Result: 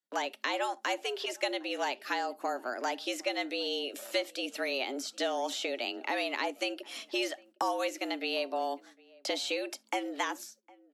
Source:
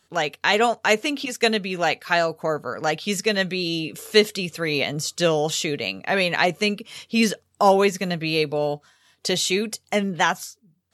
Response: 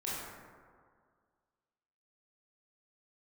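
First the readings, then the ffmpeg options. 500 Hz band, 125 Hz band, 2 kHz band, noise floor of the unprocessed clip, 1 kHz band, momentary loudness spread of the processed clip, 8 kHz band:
−12.5 dB, below −40 dB, −11.5 dB, −67 dBFS, −10.0 dB, 4 LU, −12.5 dB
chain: -filter_complex "[0:a]agate=range=-28dB:threshold=-47dB:ratio=16:detection=peak,acrossover=split=500|3600[link_01][link_02][link_03];[link_01]acompressor=threshold=-34dB:ratio=4[link_04];[link_02]acompressor=threshold=-31dB:ratio=4[link_05];[link_03]acompressor=threshold=-42dB:ratio=4[link_06];[link_04][link_05][link_06]amix=inputs=3:normalize=0,afreqshift=130,asplit=2[link_07][link_08];[link_08]adelay=758,volume=-24dB,highshelf=frequency=4000:gain=-17.1[link_09];[link_07][link_09]amix=inputs=2:normalize=0,asplit=2[link_10][link_11];[1:a]atrim=start_sample=2205,atrim=end_sample=3528[link_12];[link_11][link_12]afir=irnorm=-1:irlink=0,volume=-21.5dB[link_13];[link_10][link_13]amix=inputs=2:normalize=0,volume=-3.5dB"

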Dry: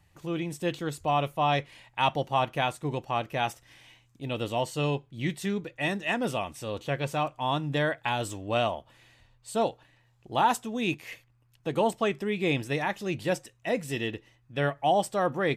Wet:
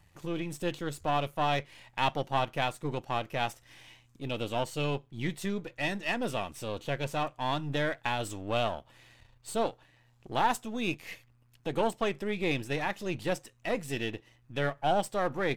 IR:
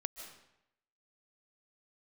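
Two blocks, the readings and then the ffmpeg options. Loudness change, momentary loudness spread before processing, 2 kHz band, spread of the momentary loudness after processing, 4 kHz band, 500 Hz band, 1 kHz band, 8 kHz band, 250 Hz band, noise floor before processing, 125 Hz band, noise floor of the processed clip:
−3.0 dB, 9 LU, −2.5 dB, 8 LU, −2.0 dB, −3.0 dB, −3.5 dB, −2.5 dB, −3.5 dB, −65 dBFS, −3.5 dB, −65 dBFS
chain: -filter_complex "[0:a]aeval=exprs='if(lt(val(0),0),0.447*val(0),val(0))':channel_layout=same,asplit=2[link_01][link_02];[link_02]acompressor=threshold=-42dB:ratio=6,volume=-1dB[link_03];[link_01][link_03]amix=inputs=2:normalize=0,volume=-2dB"

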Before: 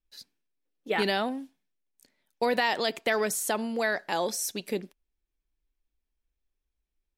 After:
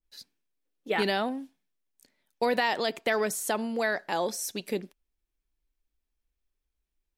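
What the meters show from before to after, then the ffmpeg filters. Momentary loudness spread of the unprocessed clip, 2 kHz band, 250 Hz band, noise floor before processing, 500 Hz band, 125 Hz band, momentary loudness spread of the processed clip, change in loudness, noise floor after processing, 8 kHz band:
8 LU, −1.0 dB, 0.0 dB, −85 dBFS, 0.0 dB, 0.0 dB, 9 LU, −0.5 dB, −85 dBFS, −2.5 dB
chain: -af "adynamicequalizer=threshold=0.01:dfrequency=1800:dqfactor=0.7:tfrequency=1800:tqfactor=0.7:attack=5:release=100:ratio=0.375:range=2:mode=cutabove:tftype=highshelf"

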